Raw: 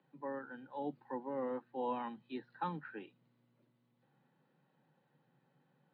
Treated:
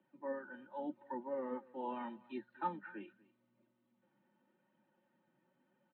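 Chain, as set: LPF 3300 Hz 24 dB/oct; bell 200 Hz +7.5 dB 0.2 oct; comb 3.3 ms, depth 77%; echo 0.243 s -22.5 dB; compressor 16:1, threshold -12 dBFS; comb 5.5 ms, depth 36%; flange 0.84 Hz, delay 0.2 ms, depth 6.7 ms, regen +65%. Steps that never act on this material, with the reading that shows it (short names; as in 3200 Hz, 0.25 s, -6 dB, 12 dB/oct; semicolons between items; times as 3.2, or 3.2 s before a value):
compressor, threshold -12 dBFS: input peak -25.0 dBFS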